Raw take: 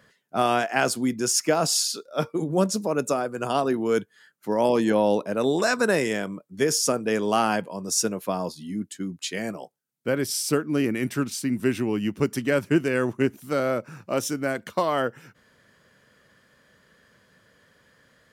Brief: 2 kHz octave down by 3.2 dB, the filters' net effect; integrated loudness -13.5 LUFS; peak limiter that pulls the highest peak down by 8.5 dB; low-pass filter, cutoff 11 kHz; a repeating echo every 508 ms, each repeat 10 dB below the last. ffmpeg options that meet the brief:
-af "lowpass=11000,equalizer=f=2000:t=o:g=-4.5,alimiter=limit=0.141:level=0:latency=1,aecho=1:1:508|1016|1524|2032:0.316|0.101|0.0324|0.0104,volume=5.31"

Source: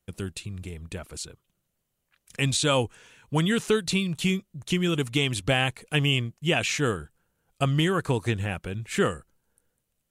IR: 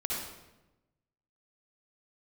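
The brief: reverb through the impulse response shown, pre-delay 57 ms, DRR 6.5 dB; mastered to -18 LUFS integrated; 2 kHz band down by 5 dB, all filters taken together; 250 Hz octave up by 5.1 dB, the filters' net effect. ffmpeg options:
-filter_complex "[0:a]equalizer=f=250:t=o:g=7.5,equalizer=f=2000:t=o:g=-7,asplit=2[s0][s1];[1:a]atrim=start_sample=2205,adelay=57[s2];[s1][s2]afir=irnorm=-1:irlink=0,volume=0.266[s3];[s0][s3]amix=inputs=2:normalize=0,volume=1.88"

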